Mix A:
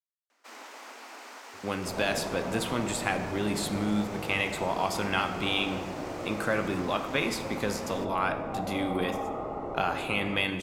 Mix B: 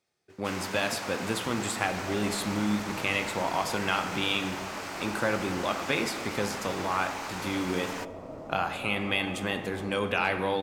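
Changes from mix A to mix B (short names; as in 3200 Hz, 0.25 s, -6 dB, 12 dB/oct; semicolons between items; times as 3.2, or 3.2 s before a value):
speech: entry -1.25 s; first sound +8.0 dB; second sound -7.0 dB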